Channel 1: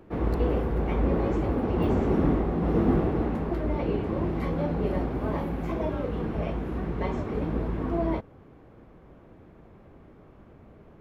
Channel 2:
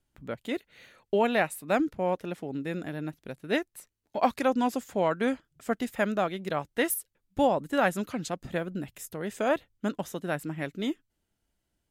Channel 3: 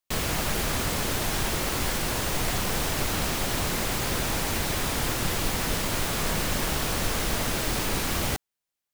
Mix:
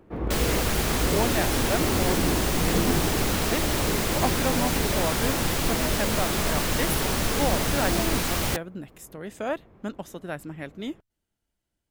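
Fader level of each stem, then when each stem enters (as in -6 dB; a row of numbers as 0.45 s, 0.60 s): -2.5 dB, -3.0 dB, +1.0 dB; 0.00 s, 0.00 s, 0.20 s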